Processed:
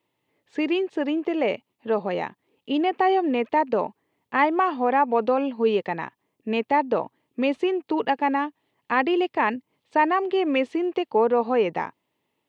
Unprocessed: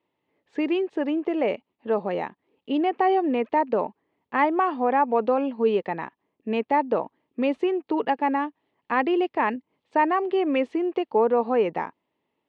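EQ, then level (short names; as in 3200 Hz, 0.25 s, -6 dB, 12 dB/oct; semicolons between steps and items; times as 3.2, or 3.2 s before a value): bell 120 Hz +7 dB 0.56 oct; high shelf 2900 Hz +9.5 dB; 0.0 dB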